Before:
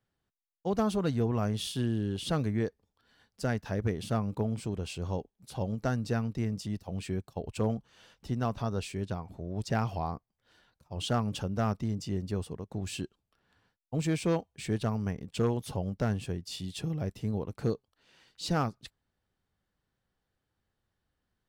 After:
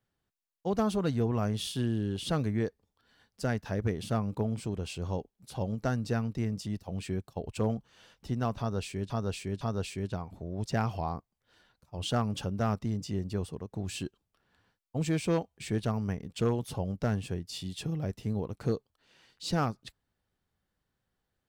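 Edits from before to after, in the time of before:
0:08.59–0:09.10: repeat, 3 plays

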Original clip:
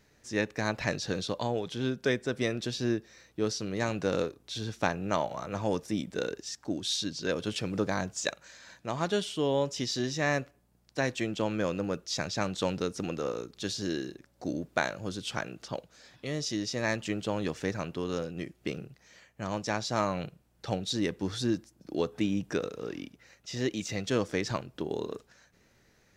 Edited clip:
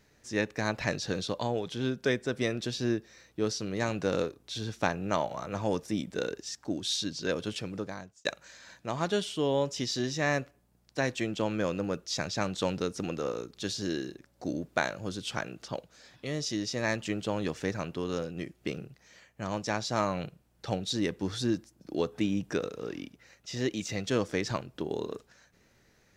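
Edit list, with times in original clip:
0:07.32–0:08.25: fade out

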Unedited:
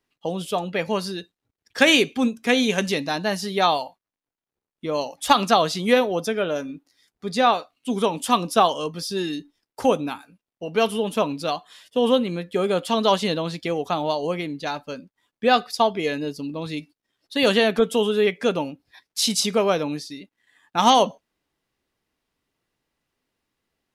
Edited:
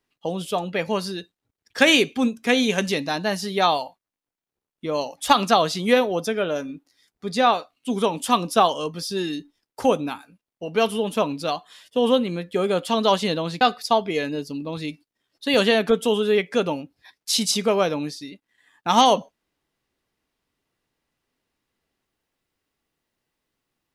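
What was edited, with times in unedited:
0:13.61–0:15.50: remove

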